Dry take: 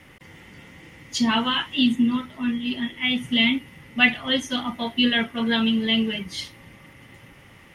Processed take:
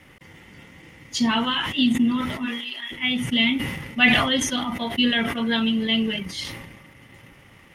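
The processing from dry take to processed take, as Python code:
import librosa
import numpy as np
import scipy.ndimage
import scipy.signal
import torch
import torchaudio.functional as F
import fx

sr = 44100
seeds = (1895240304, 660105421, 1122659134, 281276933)

y = fx.highpass(x, sr, hz=fx.line((2.45, 460.0), (2.9, 1300.0)), slope=12, at=(2.45, 2.9), fade=0.02)
y = fx.transient(y, sr, attack_db=1, sustain_db=-7)
y = fx.sustainer(y, sr, db_per_s=43.0)
y = F.gain(torch.from_numpy(y), -1.0).numpy()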